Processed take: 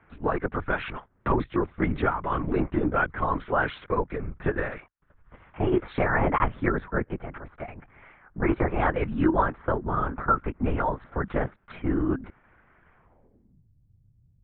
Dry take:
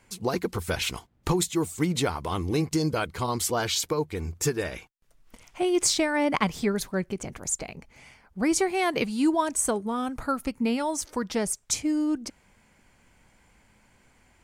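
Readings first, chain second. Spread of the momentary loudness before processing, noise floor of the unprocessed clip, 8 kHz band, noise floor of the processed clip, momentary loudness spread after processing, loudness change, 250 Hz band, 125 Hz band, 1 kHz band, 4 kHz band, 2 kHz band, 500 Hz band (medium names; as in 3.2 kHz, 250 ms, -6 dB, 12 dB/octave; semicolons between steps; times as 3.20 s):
8 LU, -63 dBFS, under -40 dB, -63 dBFS, 10 LU, -0.5 dB, -1.5 dB, +2.5 dB, +3.5 dB, -16.0 dB, +3.0 dB, 0.0 dB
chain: LPC vocoder at 8 kHz whisper; low-pass sweep 1.5 kHz -> 120 Hz, 12.95–13.67 s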